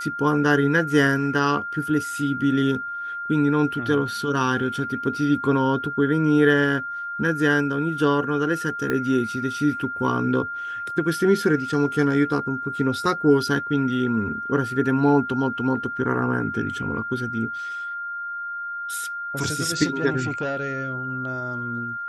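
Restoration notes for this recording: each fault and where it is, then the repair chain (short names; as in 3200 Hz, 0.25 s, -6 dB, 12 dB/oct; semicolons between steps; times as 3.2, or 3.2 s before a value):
tone 1400 Hz -28 dBFS
8.9 pop -12 dBFS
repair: de-click; notch 1400 Hz, Q 30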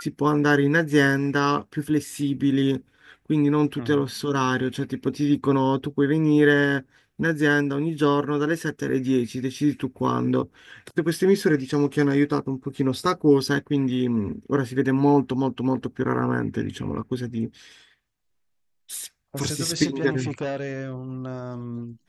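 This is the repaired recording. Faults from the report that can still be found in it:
8.9 pop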